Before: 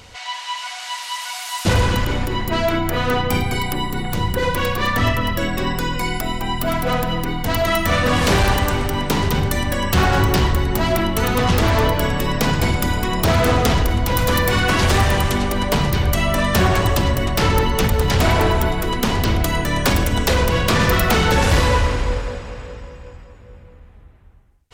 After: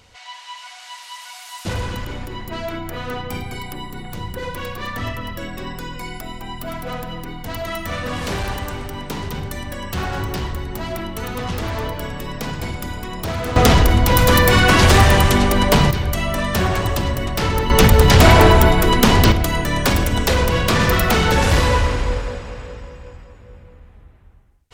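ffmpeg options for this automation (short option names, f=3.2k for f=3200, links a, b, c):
-af "asetnsamples=n=441:p=0,asendcmd='13.56 volume volume 4.5dB;15.91 volume volume -3dB;17.7 volume volume 6.5dB;19.32 volume volume 0dB',volume=-8.5dB"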